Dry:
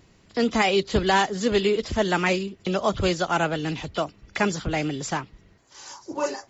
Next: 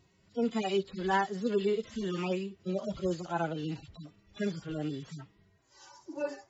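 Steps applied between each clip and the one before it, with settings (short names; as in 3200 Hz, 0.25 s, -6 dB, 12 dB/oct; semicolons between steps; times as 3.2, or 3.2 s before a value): median-filter separation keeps harmonic; gain -7 dB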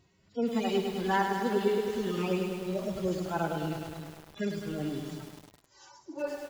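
echo 0.24 s -20 dB; lo-fi delay 0.103 s, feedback 80%, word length 8-bit, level -6 dB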